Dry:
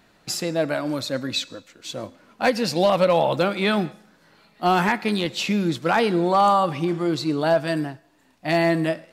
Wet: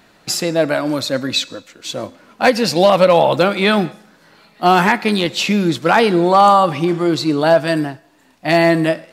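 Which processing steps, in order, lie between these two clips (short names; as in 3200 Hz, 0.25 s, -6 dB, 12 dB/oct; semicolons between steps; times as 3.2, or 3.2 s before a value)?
low shelf 130 Hz -5 dB; gain +7.5 dB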